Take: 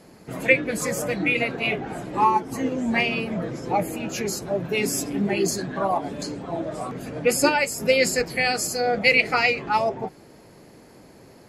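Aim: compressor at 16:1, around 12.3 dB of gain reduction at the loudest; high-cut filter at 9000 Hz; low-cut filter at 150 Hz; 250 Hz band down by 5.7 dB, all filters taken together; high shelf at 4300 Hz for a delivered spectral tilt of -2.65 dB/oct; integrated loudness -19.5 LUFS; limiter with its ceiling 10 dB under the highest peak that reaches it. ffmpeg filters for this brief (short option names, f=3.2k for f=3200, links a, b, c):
-af "highpass=150,lowpass=9k,equalizer=f=250:t=o:g=-6.5,highshelf=f=4.3k:g=7.5,acompressor=threshold=-23dB:ratio=16,volume=11dB,alimiter=limit=-10dB:level=0:latency=1"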